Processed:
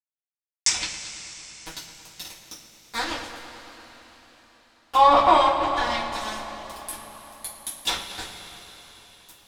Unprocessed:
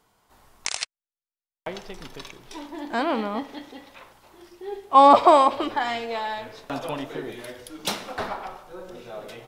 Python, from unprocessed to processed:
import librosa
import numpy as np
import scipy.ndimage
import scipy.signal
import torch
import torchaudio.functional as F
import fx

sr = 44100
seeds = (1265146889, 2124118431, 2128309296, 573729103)

p1 = np.diff(x, prepend=0.0)
p2 = np.where(np.abs(p1) >= 10.0 ** (-36.0 / 20.0), p1, 0.0)
p3 = fx.low_shelf(p2, sr, hz=270.0, db=11.0)
p4 = p3 + fx.echo_filtered(p3, sr, ms=111, feedback_pct=76, hz=4100.0, wet_db=-12.5, dry=0)
p5 = fx.env_lowpass_down(p4, sr, base_hz=2600.0, full_db=-33.5)
p6 = fx.rev_double_slope(p5, sr, seeds[0], early_s=0.27, late_s=4.8, knee_db=-20, drr_db=-8.5)
y = p6 * librosa.db_to_amplitude(6.5)